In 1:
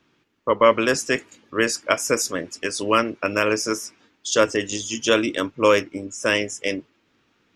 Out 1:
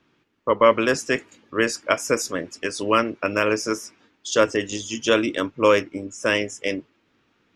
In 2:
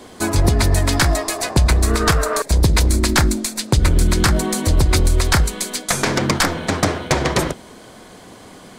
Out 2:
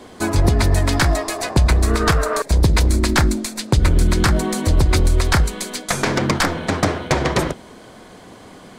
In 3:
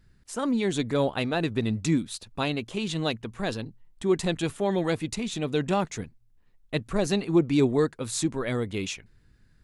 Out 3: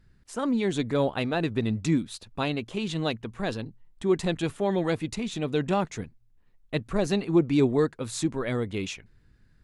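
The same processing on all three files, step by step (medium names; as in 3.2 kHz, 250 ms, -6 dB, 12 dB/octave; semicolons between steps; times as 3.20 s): treble shelf 4.8 kHz -6 dB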